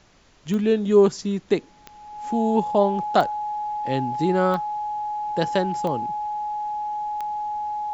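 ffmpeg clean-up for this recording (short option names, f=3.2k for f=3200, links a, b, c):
-af "adeclick=t=4,bandreject=f=840:w=30,agate=range=-21dB:threshold=-41dB"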